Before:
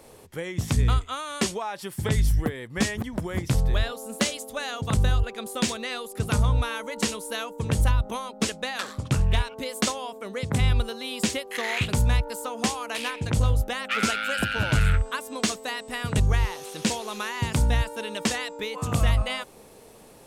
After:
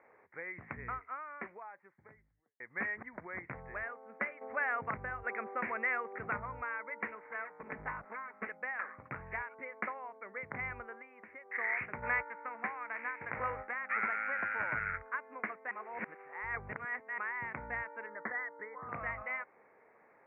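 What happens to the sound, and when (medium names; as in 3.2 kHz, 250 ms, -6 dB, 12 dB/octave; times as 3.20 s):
0.71–2.60 s: studio fade out
4.41–6.39 s: level flattener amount 50%
7.15–8.47 s: comb filter that takes the minimum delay 4.6 ms
11.01–11.52 s: compression, threshold -35 dBFS
12.02–14.72 s: formants flattened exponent 0.6
15.71–17.18 s: reverse
18.06–18.89 s: Chebyshev low-pass 2 kHz, order 6
whole clip: steep low-pass 2.2 kHz 96 dB/octave; differentiator; trim +8.5 dB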